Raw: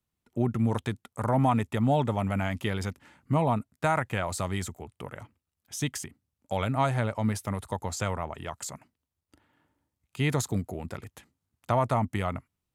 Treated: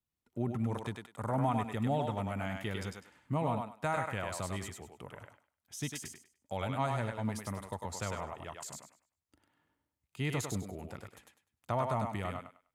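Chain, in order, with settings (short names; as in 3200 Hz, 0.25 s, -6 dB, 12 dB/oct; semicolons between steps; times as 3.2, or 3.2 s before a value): thinning echo 0.1 s, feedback 25%, high-pass 400 Hz, level -3 dB; gain -8 dB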